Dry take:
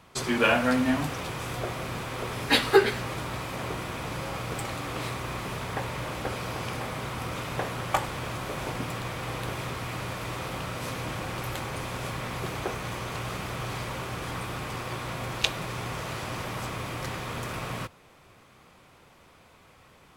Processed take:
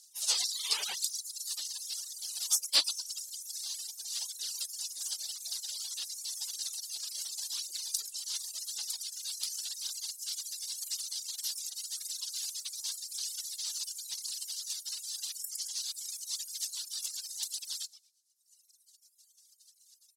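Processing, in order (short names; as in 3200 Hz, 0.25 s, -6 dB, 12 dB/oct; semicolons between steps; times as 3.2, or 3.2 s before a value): soft clip -14.5 dBFS, distortion -15 dB; dynamic EQ 1000 Hz, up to -7 dB, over -49 dBFS, Q 1.8; frequency-shifting echo 0.11 s, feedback 52%, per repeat +37 Hz, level -6 dB; spectral gate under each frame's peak -25 dB weak; LPF 11000 Hz 12 dB/oct; reverb removal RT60 1.1 s; HPF 340 Hz 12 dB/oct, from 8.98 s 1200 Hz; resonant high shelf 3100 Hz +13.5 dB, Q 1.5; phaser 0.91 Hz, delay 3.7 ms, feedback 39%; reverb removal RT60 1.9 s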